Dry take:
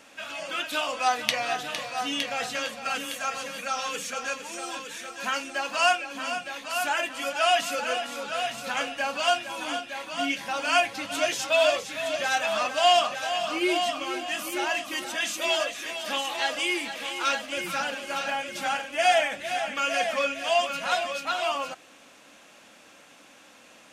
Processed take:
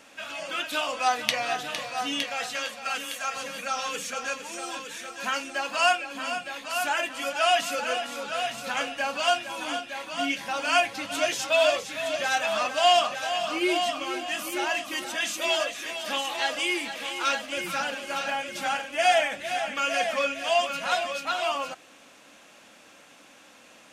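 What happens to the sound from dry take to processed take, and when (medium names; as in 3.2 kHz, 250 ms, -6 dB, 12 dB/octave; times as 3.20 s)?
2.24–3.36 s: bass shelf 400 Hz -8.5 dB
5.65–6.65 s: band-stop 5.9 kHz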